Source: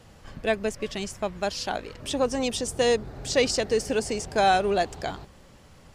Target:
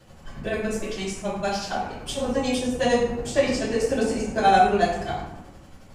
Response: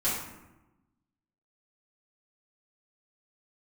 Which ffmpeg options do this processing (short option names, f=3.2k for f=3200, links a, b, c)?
-filter_complex "[0:a]acrossover=split=3500[a][b];[b]alimiter=level_in=2.5dB:limit=-24dB:level=0:latency=1:release=382,volume=-2.5dB[c];[a][c]amix=inputs=2:normalize=0,tremolo=f=11:d=0.92[d];[1:a]atrim=start_sample=2205[e];[d][e]afir=irnorm=-1:irlink=0,volume=-3dB"